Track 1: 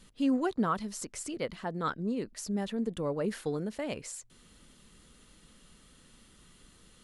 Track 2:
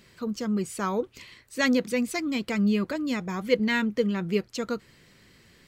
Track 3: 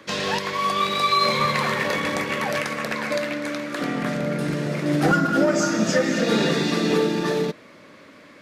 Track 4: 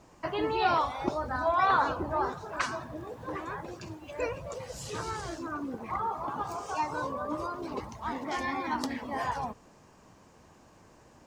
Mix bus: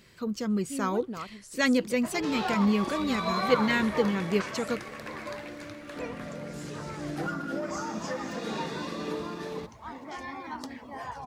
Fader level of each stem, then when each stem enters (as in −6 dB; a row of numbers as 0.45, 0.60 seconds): −9.0, −1.0, −14.5, −6.5 decibels; 0.50, 0.00, 2.15, 1.80 seconds